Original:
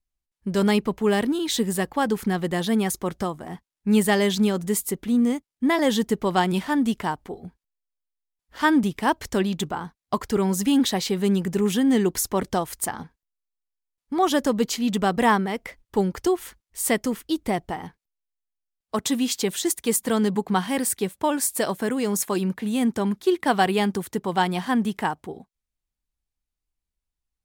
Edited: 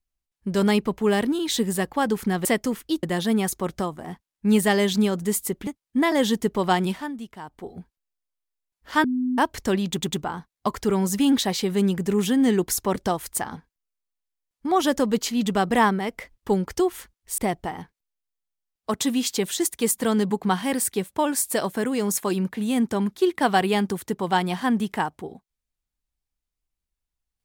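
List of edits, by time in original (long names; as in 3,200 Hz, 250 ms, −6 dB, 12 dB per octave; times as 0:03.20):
0:05.09–0:05.34: remove
0:06.49–0:07.40: duck −13 dB, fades 0.31 s
0:08.71–0:09.05: beep over 252 Hz −21 dBFS
0:09.56: stutter 0.10 s, 3 plays
0:16.85–0:17.43: move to 0:02.45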